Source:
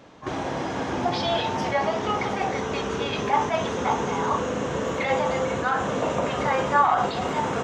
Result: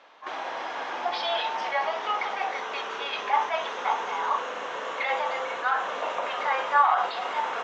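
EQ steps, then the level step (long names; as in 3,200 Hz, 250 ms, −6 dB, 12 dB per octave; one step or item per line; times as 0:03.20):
flat-topped band-pass 1,800 Hz, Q 0.5
0.0 dB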